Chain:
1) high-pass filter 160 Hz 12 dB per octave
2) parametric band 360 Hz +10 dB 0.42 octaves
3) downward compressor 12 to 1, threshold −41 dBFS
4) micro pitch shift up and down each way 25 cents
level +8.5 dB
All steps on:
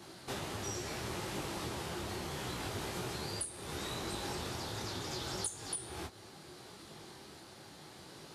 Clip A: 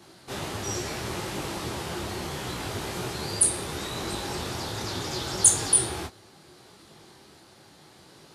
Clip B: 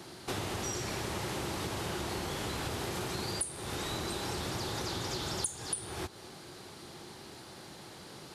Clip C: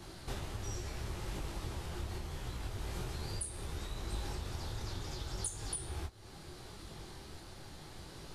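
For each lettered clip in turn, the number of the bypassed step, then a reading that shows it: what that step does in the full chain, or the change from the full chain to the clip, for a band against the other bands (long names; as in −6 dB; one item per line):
3, average gain reduction 8.5 dB
4, change in integrated loudness +3.5 LU
1, 125 Hz band +8.0 dB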